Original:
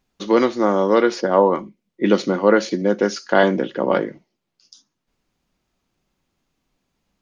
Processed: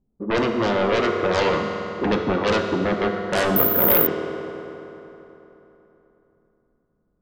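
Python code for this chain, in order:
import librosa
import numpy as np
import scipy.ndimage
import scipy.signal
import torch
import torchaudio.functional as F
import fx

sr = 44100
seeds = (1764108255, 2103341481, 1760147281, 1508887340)

p1 = scipy.signal.sosfilt(scipy.signal.butter(4, 1800.0, 'lowpass', fs=sr, output='sos'), x)
p2 = fx.env_lowpass(p1, sr, base_hz=360.0, full_db=-13.5)
p3 = fx.fold_sine(p2, sr, drive_db=17, ceiling_db=-1.0)
p4 = p2 + (p3 * 10.0 ** (-9.0 / 20.0))
p5 = fx.rev_fdn(p4, sr, rt60_s=3.5, lf_ratio=1.0, hf_ratio=0.65, size_ms=14.0, drr_db=3.0)
p6 = fx.resample_bad(p5, sr, factor=3, down='filtered', up='zero_stuff', at=(3.56, 4.07))
y = p6 * 10.0 ** (-11.0 / 20.0)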